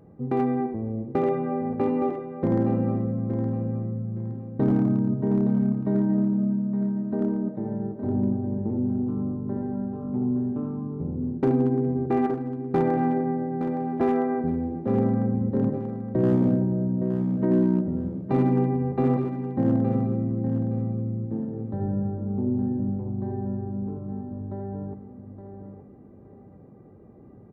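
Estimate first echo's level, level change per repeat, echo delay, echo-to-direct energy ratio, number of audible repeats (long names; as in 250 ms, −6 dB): −9.0 dB, −11.5 dB, 867 ms, −8.5 dB, 3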